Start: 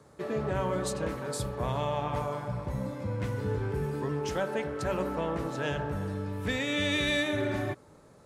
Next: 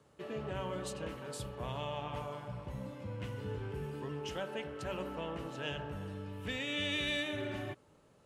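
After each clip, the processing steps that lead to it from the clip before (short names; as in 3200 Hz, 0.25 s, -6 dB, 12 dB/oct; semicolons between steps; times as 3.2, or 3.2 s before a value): bell 2900 Hz +12 dB 0.35 oct; gain -9 dB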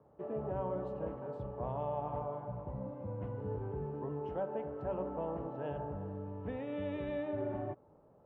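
synth low-pass 790 Hz, resonance Q 1.7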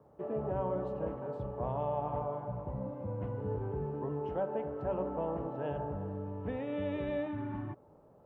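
spectral gain 7.27–7.74, 360–850 Hz -15 dB; gain +3 dB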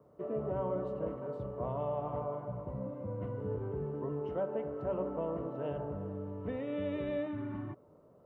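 notch comb 830 Hz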